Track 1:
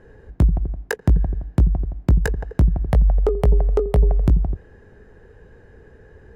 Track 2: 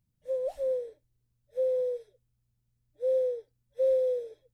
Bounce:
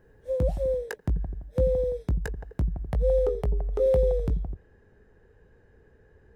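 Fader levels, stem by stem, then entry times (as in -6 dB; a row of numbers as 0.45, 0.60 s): -11.0, +2.5 dB; 0.00, 0.00 s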